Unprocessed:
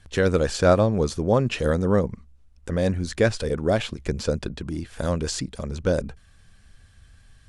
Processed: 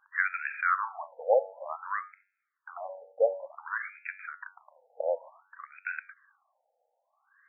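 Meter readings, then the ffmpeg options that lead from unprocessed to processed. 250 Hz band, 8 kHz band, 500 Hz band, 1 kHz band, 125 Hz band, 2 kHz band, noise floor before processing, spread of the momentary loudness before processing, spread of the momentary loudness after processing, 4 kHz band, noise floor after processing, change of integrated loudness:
below −40 dB, below −40 dB, −9.0 dB, −2.0 dB, below −40 dB, 0.0 dB, −54 dBFS, 12 LU, 18 LU, below −40 dB, −80 dBFS, −8.5 dB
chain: -af "bandreject=frequency=94.69:width_type=h:width=4,bandreject=frequency=189.38:width_type=h:width=4,bandreject=frequency=284.07:width_type=h:width=4,bandreject=frequency=378.76:width_type=h:width=4,bandreject=frequency=473.45:width_type=h:width=4,bandreject=frequency=568.14:width_type=h:width=4,bandreject=frequency=662.83:width_type=h:width=4,bandreject=frequency=757.52:width_type=h:width=4,bandreject=frequency=852.21:width_type=h:width=4,bandreject=frequency=946.9:width_type=h:width=4,bandreject=frequency=1041.59:width_type=h:width=4,bandreject=frequency=1136.28:width_type=h:width=4,bandreject=frequency=1230.97:width_type=h:width=4,bandreject=frequency=1325.66:width_type=h:width=4,bandreject=frequency=1420.35:width_type=h:width=4,bandreject=frequency=1515.04:width_type=h:width=4,bandreject=frequency=1609.73:width_type=h:width=4,bandreject=frequency=1704.42:width_type=h:width=4,bandreject=frequency=1799.11:width_type=h:width=4,bandreject=frequency=1893.8:width_type=h:width=4,bandreject=frequency=1988.49:width_type=h:width=4,bandreject=frequency=2083.18:width_type=h:width=4,bandreject=frequency=2177.87:width_type=h:width=4,bandreject=frequency=2272.56:width_type=h:width=4,bandreject=frequency=2367.25:width_type=h:width=4,bandreject=frequency=2461.94:width_type=h:width=4,bandreject=frequency=2556.63:width_type=h:width=4,bandreject=frequency=2651.32:width_type=h:width=4,crystalizer=i=5:c=0,afftfilt=real='re*between(b*sr/1024,610*pow(1900/610,0.5+0.5*sin(2*PI*0.55*pts/sr))/1.41,610*pow(1900/610,0.5+0.5*sin(2*PI*0.55*pts/sr))*1.41)':imag='im*between(b*sr/1024,610*pow(1900/610,0.5+0.5*sin(2*PI*0.55*pts/sr))/1.41,610*pow(1900/610,0.5+0.5*sin(2*PI*0.55*pts/sr))*1.41)':win_size=1024:overlap=0.75,volume=-1dB"

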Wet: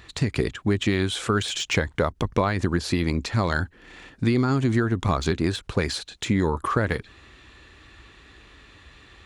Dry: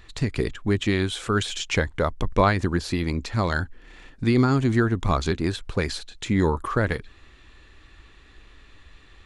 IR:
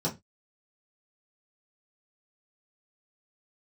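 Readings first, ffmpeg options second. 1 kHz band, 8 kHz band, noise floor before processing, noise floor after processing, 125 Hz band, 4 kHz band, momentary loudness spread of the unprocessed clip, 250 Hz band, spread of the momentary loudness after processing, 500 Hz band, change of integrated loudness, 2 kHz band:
−1.0 dB, +2.0 dB, −52 dBFS, −54 dBFS, −0.5 dB, +1.5 dB, 7 LU, 0.0 dB, 5 LU, −0.5 dB, −0.5 dB, 0.0 dB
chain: -af "deesser=0.65,highpass=63,acompressor=threshold=-22dB:ratio=6,volume=4dB"

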